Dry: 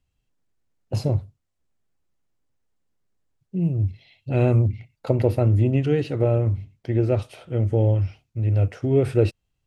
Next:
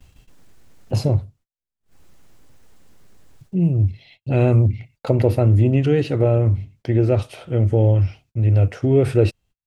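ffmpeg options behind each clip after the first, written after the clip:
-filter_complex "[0:a]asplit=2[s0][s1];[s1]alimiter=limit=0.158:level=0:latency=1:release=51,volume=0.841[s2];[s0][s2]amix=inputs=2:normalize=0,acompressor=mode=upward:threshold=0.0355:ratio=2.5,agate=range=0.02:threshold=0.00447:ratio=16:detection=peak"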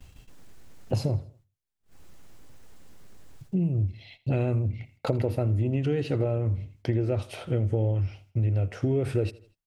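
-af "acompressor=threshold=0.0708:ratio=6,aecho=1:1:81|162|243:0.1|0.043|0.0185"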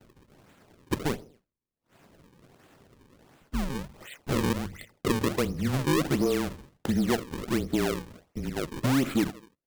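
-af "highpass=f=250:t=q:w=0.5412,highpass=f=250:t=q:w=1.307,lowpass=f=3500:t=q:w=0.5176,lowpass=f=3500:t=q:w=0.7071,lowpass=f=3500:t=q:w=1.932,afreqshift=-140,acrusher=samples=37:mix=1:aa=0.000001:lfo=1:lforange=59.2:lforate=1.4,asoftclip=type=tanh:threshold=0.0708,volume=2"

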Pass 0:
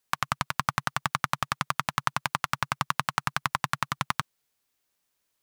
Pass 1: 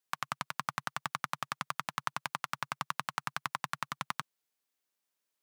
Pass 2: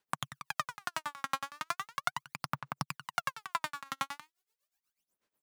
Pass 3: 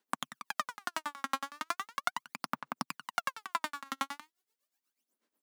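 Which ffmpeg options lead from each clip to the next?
-af "highpass=170,volume=0.398"
-af "aphaser=in_gain=1:out_gain=1:delay=3.7:decay=0.79:speed=0.38:type=sinusoidal,tremolo=f=8.2:d=0.9"
-af "lowshelf=f=170:t=q:w=3:g=-12.5,bandreject=f=2500:w=26"

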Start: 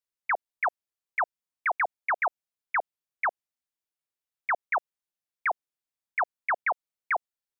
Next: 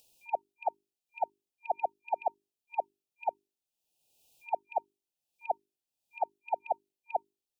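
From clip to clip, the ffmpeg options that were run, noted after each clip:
-af "bandreject=f=50:t=h:w=6,bandreject=f=100:t=h:w=6,bandreject=f=150:t=h:w=6,bandreject=f=200:t=h:w=6,bandreject=f=250:t=h:w=6,bandreject=f=300:t=h:w=6,bandreject=f=350:t=h:w=6,bandreject=f=400:t=h:w=6,afftfilt=real='re*(1-between(b*sr/4096,920,2400))':imag='im*(1-between(b*sr/4096,920,2400))':win_size=4096:overlap=0.75,acompressor=mode=upward:threshold=0.00501:ratio=2.5"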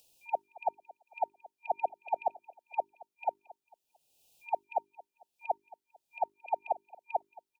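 -filter_complex "[0:a]acrossover=split=190[s0][s1];[s0]acrusher=samples=31:mix=1:aa=0.000001:lfo=1:lforange=49.6:lforate=1[s2];[s2][s1]amix=inputs=2:normalize=0,aecho=1:1:224|448|672:0.0891|0.033|0.0122"

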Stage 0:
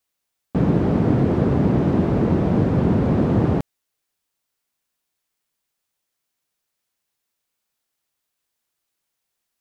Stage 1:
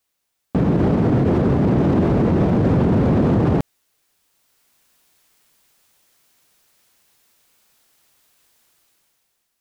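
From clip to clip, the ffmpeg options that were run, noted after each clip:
-af "dynaudnorm=f=160:g=11:m=5.01,alimiter=level_in=4.22:limit=0.891:release=50:level=0:latency=1,volume=0.376"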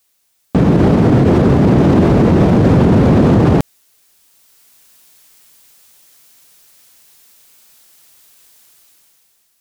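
-af "highshelf=f=3400:g=7.5,volume=2.11"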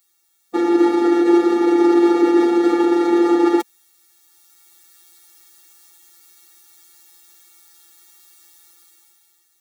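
-af "afftfilt=real='hypot(re,im)*cos(PI*b)':imag='0':win_size=1024:overlap=0.75,afftfilt=real='re*eq(mod(floor(b*sr/1024/240),2),1)':imag='im*eq(mod(floor(b*sr/1024/240),2),1)':win_size=1024:overlap=0.75,volume=1.68"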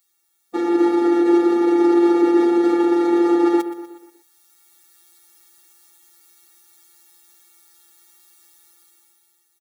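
-af "aecho=1:1:122|244|366|488|610:0.211|0.108|0.055|0.028|0.0143,volume=0.668"

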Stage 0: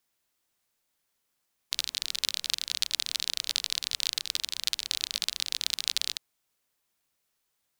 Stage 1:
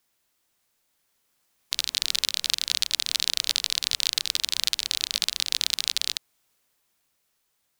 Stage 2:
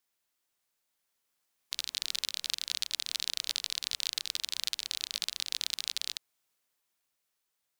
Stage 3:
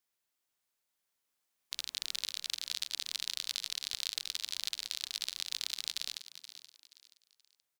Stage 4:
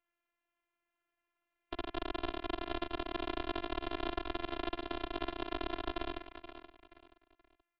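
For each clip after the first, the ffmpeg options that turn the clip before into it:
-af "alimiter=limit=0.282:level=0:latency=1:release=371,dynaudnorm=f=300:g=11:m=1.78,volume=1.78"
-af "lowshelf=f=300:g=-5.5,volume=0.376"
-filter_complex "[0:a]asplit=4[s0][s1][s2][s3];[s1]adelay=477,afreqshift=130,volume=0.237[s4];[s2]adelay=954,afreqshift=260,volume=0.0759[s5];[s3]adelay=1431,afreqshift=390,volume=0.0243[s6];[s0][s4][s5][s6]amix=inputs=4:normalize=0,volume=0.668"
-af "aeval=exprs='max(val(0),0)':c=same,highpass=f=200:t=q:w=0.5412,highpass=f=200:t=q:w=1.307,lowpass=f=2900:t=q:w=0.5176,lowpass=f=2900:t=q:w=0.7071,lowpass=f=2900:t=q:w=1.932,afreqshift=-210,afftfilt=real='hypot(re,im)*cos(PI*b)':imag='0':win_size=512:overlap=0.75,volume=4.47"

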